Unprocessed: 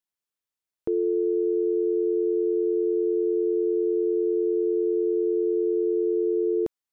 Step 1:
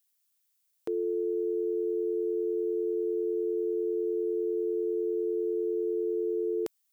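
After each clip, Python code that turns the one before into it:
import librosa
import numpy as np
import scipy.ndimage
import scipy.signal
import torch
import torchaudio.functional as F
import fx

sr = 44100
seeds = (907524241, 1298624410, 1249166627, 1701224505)

y = fx.tilt_eq(x, sr, slope=4.5)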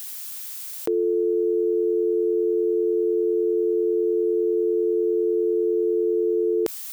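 y = fx.env_flatten(x, sr, amount_pct=70)
y = y * librosa.db_to_amplitude(8.0)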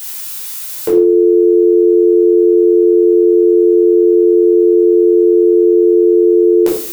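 y = fx.room_shoebox(x, sr, seeds[0], volume_m3=520.0, walls='furnished', distance_m=4.8)
y = fx.end_taper(y, sr, db_per_s=220.0)
y = y * librosa.db_to_amplitude(4.5)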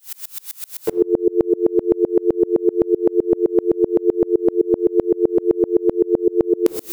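y = fx.tremolo_decay(x, sr, direction='swelling', hz=7.8, depth_db=32)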